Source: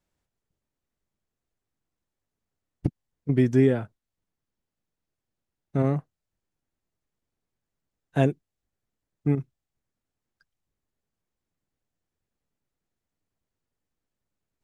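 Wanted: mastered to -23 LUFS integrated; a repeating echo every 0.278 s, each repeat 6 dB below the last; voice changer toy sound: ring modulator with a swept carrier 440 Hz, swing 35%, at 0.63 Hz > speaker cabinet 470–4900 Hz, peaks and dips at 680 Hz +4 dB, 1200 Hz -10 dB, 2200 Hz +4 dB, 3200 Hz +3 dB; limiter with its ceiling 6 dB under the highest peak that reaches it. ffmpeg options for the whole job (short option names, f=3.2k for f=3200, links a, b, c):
-af "alimiter=limit=-13.5dB:level=0:latency=1,aecho=1:1:278|556|834|1112|1390|1668:0.501|0.251|0.125|0.0626|0.0313|0.0157,aeval=exprs='val(0)*sin(2*PI*440*n/s+440*0.35/0.63*sin(2*PI*0.63*n/s))':c=same,highpass=470,equalizer=f=680:t=q:w=4:g=4,equalizer=f=1.2k:t=q:w=4:g=-10,equalizer=f=2.2k:t=q:w=4:g=4,equalizer=f=3.2k:t=q:w=4:g=3,lowpass=f=4.9k:w=0.5412,lowpass=f=4.9k:w=1.3066,volume=11dB"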